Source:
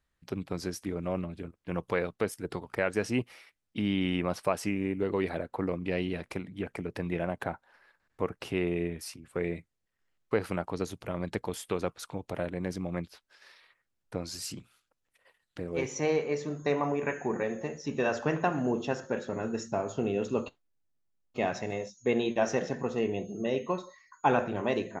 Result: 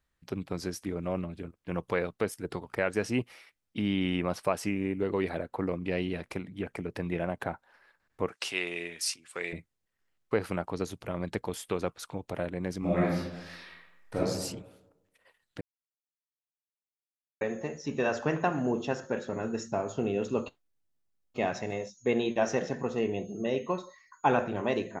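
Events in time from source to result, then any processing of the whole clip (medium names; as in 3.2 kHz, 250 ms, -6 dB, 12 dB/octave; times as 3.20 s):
8.29–9.53 s: frequency weighting ITU-R 468
12.79–14.18 s: reverb throw, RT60 0.99 s, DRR -9.5 dB
15.61–17.41 s: mute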